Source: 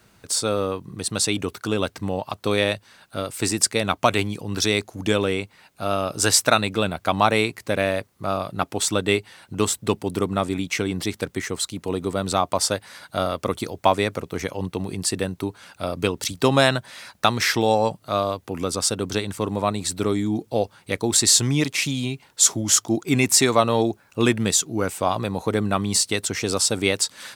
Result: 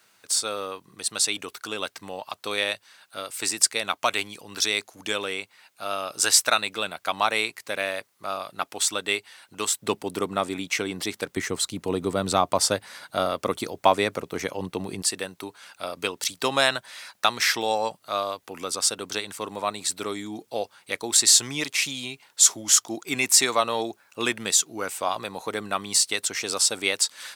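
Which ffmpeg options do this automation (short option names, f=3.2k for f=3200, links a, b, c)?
-af "asetnsamples=n=441:p=0,asendcmd='9.81 highpass f 470;11.37 highpass f 120;12.85 highpass f 270;15.02 highpass f 980',highpass=f=1.3k:p=1"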